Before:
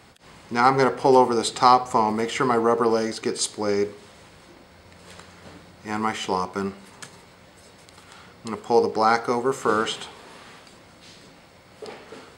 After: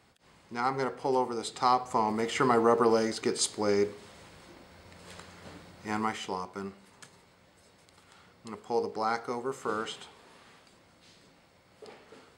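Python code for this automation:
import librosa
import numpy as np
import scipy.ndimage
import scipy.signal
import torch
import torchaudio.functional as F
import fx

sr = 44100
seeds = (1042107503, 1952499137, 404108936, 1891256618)

y = fx.gain(x, sr, db=fx.line((1.39, -12.0), (2.46, -3.5), (5.9, -3.5), (6.37, -11.0)))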